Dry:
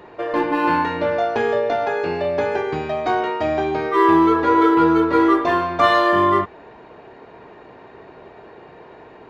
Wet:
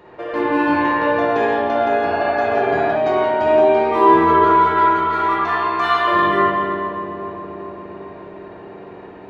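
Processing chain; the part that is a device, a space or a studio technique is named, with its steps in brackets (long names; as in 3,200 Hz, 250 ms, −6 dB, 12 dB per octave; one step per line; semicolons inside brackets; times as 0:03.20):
0:04.39–0:06.08: elliptic high-pass filter 740 Hz
dub delay into a spring reverb (feedback echo with a low-pass in the loop 408 ms, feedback 79%, low-pass 960 Hz, level −9 dB; spring reverb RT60 1.9 s, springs 48/56 ms, chirp 20 ms, DRR −5 dB)
0:02.09–0:02.93: healed spectral selection 650–1,700 Hz before
level −4 dB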